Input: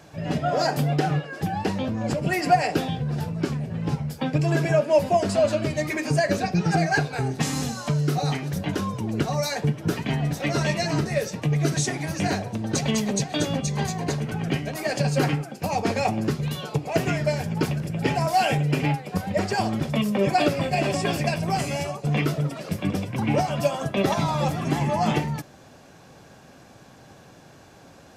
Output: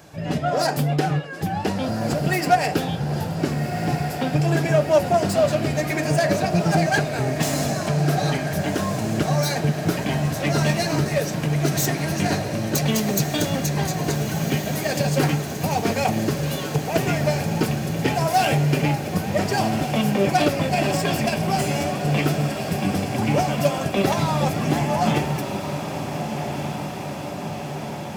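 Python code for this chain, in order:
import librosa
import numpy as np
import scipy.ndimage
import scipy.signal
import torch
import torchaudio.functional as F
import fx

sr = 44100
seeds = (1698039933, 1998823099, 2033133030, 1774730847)

y = fx.self_delay(x, sr, depth_ms=0.085)
y = fx.high_shelf(y, sr, hz=11000.0, db=10.5)
y = fx.echo_diffused(y, sr, ms=1460, feedback_pct=71, wet_db=-8.0)
y = y * 10.0 ** (1.5 / 20.0)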